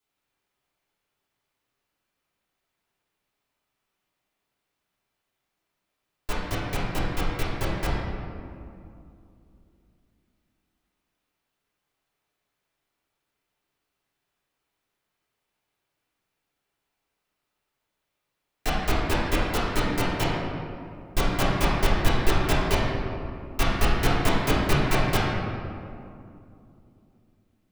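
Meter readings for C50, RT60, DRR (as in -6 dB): -1.5 dB, 2.5 s, -11.0 dB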